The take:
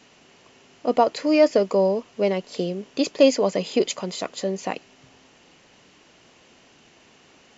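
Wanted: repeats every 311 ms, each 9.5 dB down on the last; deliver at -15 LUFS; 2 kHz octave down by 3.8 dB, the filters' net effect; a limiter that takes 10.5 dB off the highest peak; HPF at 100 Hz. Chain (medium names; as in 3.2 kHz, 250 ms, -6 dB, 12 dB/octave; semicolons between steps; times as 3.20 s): high-pass 100 Hz; peaking EQ 2 kHz -5 dB; peak limiter -16 dBFS; feedback delay 311 ms, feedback 33%, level -9.5 dB; trim +12 dB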